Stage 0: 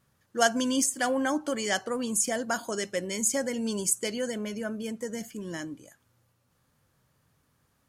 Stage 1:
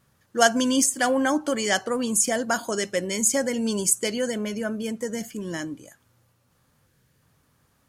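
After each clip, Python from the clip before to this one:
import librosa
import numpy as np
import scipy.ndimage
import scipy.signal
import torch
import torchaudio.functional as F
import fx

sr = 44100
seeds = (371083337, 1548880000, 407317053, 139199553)

y = fx.spec_box(x, sr, start_s=6.87, length_s=0.34, low_hz=550.0, high_hz=1400.0, gain_db=-6)
y = F.gain(torch.from_numpy(y), 5.0).numpy()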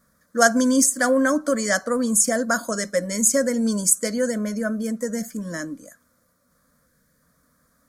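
y = fx.fixed_phaser(x, sr, hz=560.0, stages=8)
y = F.gain(torch.from_numpy(y), 4.5).numpy()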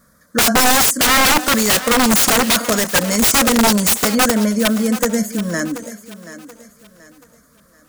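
y = (np.mod(10.0 ** (17.0 / 20.0) * x + 1.0, 2.0) - 1.0) / 10.0 ** (17.0 / 20.0)
y = fx.echo_thinned(y, sr, ms=731, feedback_pct=36, hz=190.0, wet_db=-14)
y = F.gain(torch.from_numpy(y), 9.0).numpy()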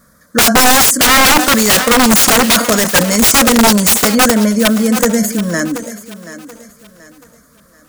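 y = fx.sustainer(x, sr, db_per_s=100.0)
y = F.gain(torch.from_numpy(y), 4.5).numpy()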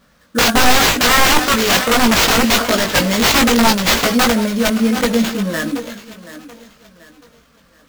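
y = fx.sample_hold(x, sr, seeds[0], rate_hz=10000.0, jitter_pct=20)
y = fx.chorus_voices(y, sr, voices=6, hz=0.76, base_ms=19, depth_ms=2.3, mix_pct=40)
y = F.gain(torch.from_numpy(y), -1.0).numpy()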